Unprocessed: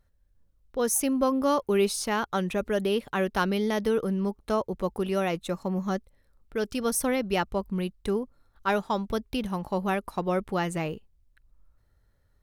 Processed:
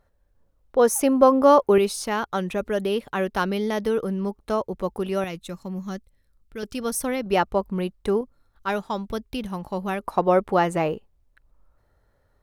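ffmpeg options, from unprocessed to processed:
-af "asetnsamples=n=441:p=0,asendcmd='1.78 equalizer g 2.5;5.24 equalizer g -7.5;6.63 equalizer g 0;7.26 equalizer g 7.5;8.21 equalizer g -0.5;10 equalizer g 10.5',equalizer=f=700:t=o:w=2.6:g=11.5"

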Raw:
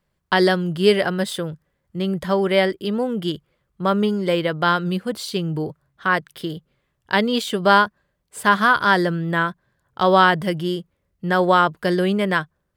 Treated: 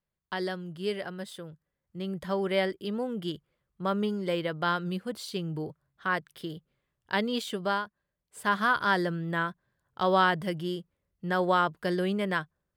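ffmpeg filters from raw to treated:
-af "volume=-0.5dB,afade=t=in:st=1.44:d=1.03:silence=0.473151,afade=t=out:st=7.5:d=0.32:silence=0.375837,afade=t=in:st=7.82:d=0.9:silence=0.354813"

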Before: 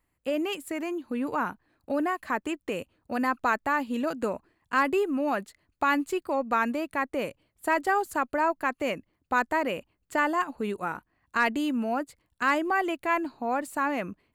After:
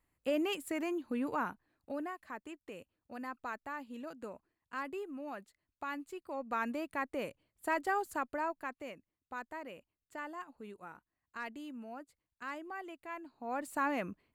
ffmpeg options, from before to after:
-af "volume=16.5dB,afade=t=out:st=0.97:d=1.26:silence=0.251189,afade=t=in:st=6.18:d=0.6:silence=0.398107,afade=t=out:st=8.1:d=0.85:silence=0.316228,afade=t=in:st=13.32:d=0.43:silence=0.237137"

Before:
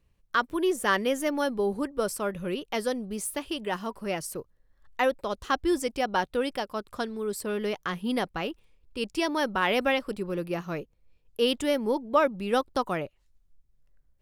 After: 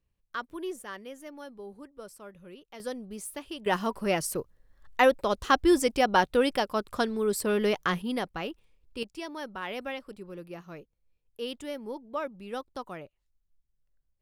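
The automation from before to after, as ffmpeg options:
-af "asetnsamples=n=441:p=0,asendcmd='0.82 volume volume -16.5dB;2.8 volume volume -6.5dB;3.66 volume volume 4dB;8.02 volume volume -3dB;9.03 volume volume -11dB',volume=-10dB"

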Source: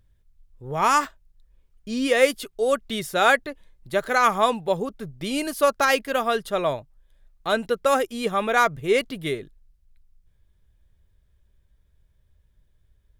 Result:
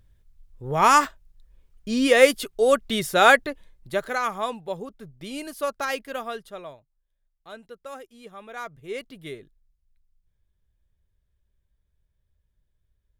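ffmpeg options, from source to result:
-af "volume=12.5dB,afade=t=out:st=3.47:d=0.78:silence=0.281838,afade=t=out:st=6.15:d=0.61:silence=0.281838,afade=t=in:st=8.46:d=0.91:silence=0.334965"

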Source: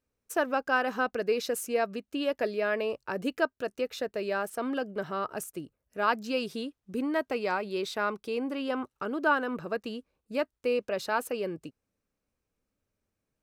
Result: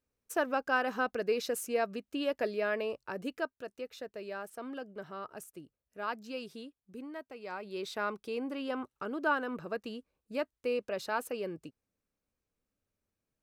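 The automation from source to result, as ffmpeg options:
-af "volume=9dB,afade=t=out:st=2.62:d=1.06:silence=0.446684,afade=t=out:st=6.52:d=0.84:silence=0.473151,afade=t=in:st=7.36:d=0.6:silence=0.251189"

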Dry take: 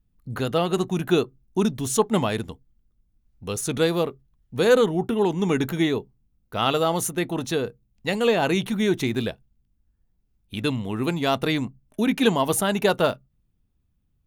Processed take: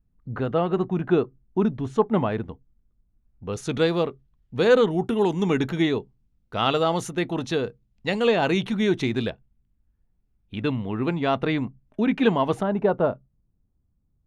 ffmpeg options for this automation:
-af "asetnsamples=n=441:p=0,asendcmd='3.53 lowpass f 4400;4.91 lowpass f 9000;5.43 lowpass f 5100;9.3 lowpass f 2500;12.63 lowpass f 1000',lowpass=1.7k"

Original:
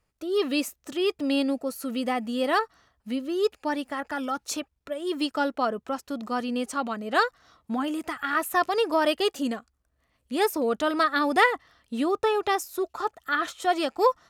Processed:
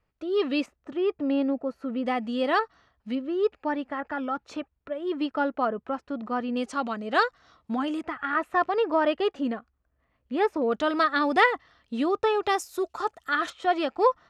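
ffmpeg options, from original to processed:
-af "asetnsamples=n=441:p=0,asendcmd='0.66 lowpass f 1600;2.06 lowpass f 4200;3.15 lowpass f 2200;6.57 lowpass f 5300;8.01 lowpass f 2200;10.72 lowpass f 4900;12.47 lowpass f 9200;13.5 lowpass f 3300',lowpass=3.3k"

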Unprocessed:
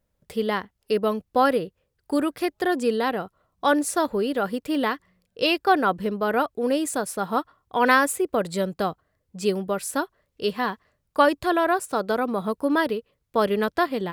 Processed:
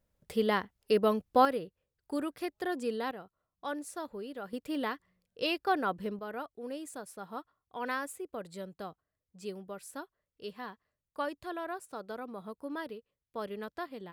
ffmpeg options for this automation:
-af "asetnsamples=n=441:p=0,asendcmd='1.45 volume volume -11dB;3.11 volume volume -17dB;4.53 volume volume -10dB;6.19 volume volume -17dB',volume=-3.5dB"

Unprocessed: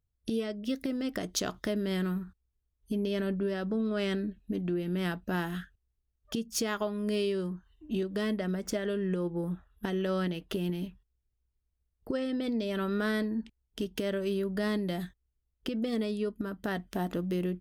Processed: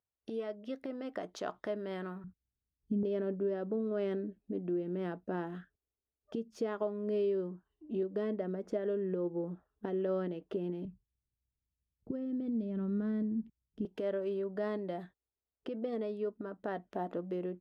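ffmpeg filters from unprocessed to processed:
-af "asetnsamples=n=441:p=0,asendcmd='2.24 bandpass f 190;3.03 bandpass f 460;10.85 bandpass f 160;13.85 bandpass f 610',bandpass=f=770:t=q:w=1.1:csg=0"

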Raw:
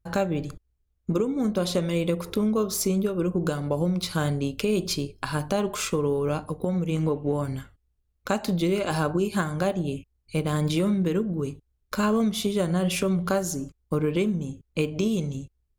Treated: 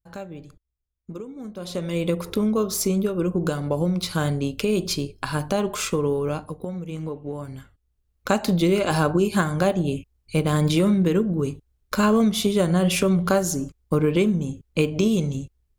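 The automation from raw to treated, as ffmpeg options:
-af "volume=12.5dB,afade=t=in:st=1.57:d=0.53:silence=0.223872,afade=t=out:st=6.09:d=0.67:silence=0.398107,afade=t=in:st=7.53:d=0.77:silence=0.298538"

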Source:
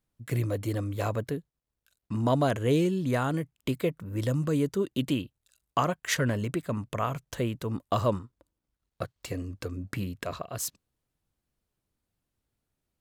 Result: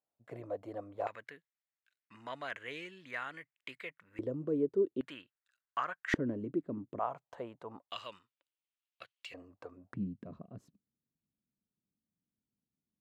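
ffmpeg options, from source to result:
-af "asetnsamples=n=441:p=0,asendcmd='1.07 bandpass f 2000;4.19 bandpass f 390;5.01 bandpass f 1600;6.14 bandpass f 310;6.99 bandpass f 790;7.89 bandpass f 2800;9.34 bandpass f 800;9.94 bandpass f 210',bandpass=f=690:t=q:w=2.8:csg=0"

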